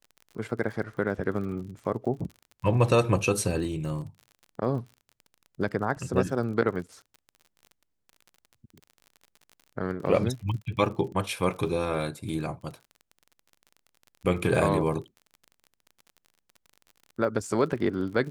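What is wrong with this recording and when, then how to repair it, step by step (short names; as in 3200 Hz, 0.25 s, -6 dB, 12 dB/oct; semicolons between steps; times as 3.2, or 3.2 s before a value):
crackle 39/s -38 dBFS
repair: de-click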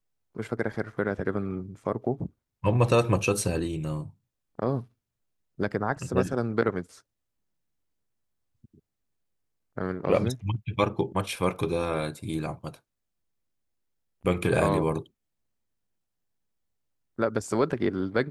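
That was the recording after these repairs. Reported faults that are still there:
none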